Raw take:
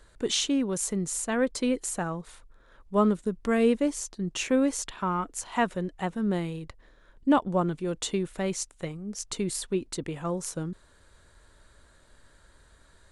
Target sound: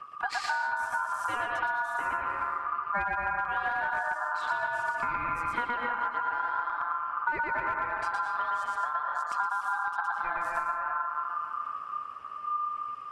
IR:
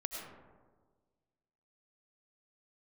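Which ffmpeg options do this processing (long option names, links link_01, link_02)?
-filter_complex "[0:a]bass=frequency=250:gain=8,treble=frequency=4000:gain=-13,acrossover=split=570[link_01][link_02];[link_01]dynaudnorm=framelen=270:gausssize=11:maxgain=5dB[link_03];[link_03][link_02]amix=inputs=2:normalize=0,aphaser=in_gain=1:out_gain=1:delay=2.5:decay=0.5:speed=1.8:type=sinusoidal,asplit=2[link_04][link_05];[1:a]atrim=start_sample=2205,adelay=116[link_06];[link_05][link_06]afir=irnorm=-1:irlink=0,volume=1.5dB[link_07];[link_04][link_07]amix=inputs=2:normalize=0,asoftclip=type=hard:threshold=-6.5dB,aeval=exprs='val(0)*sin(2*PI*1200*n/s)':channel_layout=same,acompressor=threshold=-27dB:ratio=10"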